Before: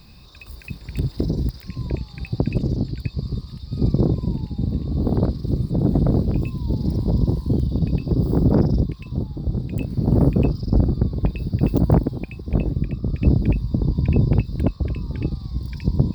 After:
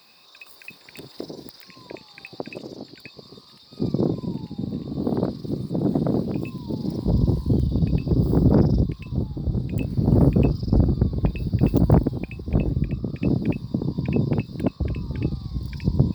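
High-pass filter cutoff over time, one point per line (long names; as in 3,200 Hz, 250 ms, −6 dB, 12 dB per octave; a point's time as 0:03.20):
520 Hz
from 0:03.80 190 Hz
from 0:07.05 52 Hz
from 0:13.04 160 Hz
from 0:14.80 67 Hz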